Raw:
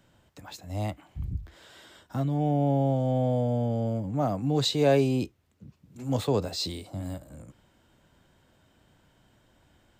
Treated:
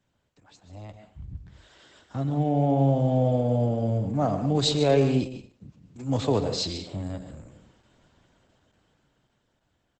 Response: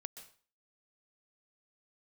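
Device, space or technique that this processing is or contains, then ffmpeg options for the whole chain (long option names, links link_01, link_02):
speakerphone in a meeting room: -filter_complex "[1:a]atrim=start_sample=2205[link_01];[0:a][link_01]afir=irnorm=-1:irlink=0,asplit=2[link_02][link_03];[link_03]adelay=90,highpass=300,lowpass=3400,asoftclip=type=hard:threshold=-23.5dB,volume=-18dB[link_04];[link_02][link_04]amix=inputs=2:normalize=0,dynaudnorm=framelen=240:gausssize=17:maxgain=15.5dB,volume=-6dB" -ar 48000 -c:a libopus -b:a 12k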